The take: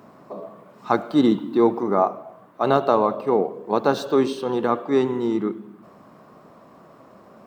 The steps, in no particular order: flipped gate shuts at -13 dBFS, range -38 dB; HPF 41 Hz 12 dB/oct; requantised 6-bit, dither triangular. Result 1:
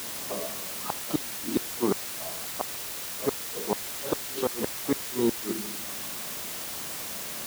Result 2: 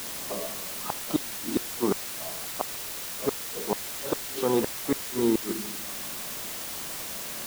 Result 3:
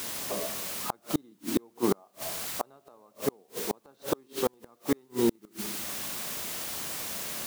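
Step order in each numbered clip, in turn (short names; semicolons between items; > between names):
flipped gate > requantised > HPF; HPF > flipped gate > requantised; requantised > HPF > flipped gate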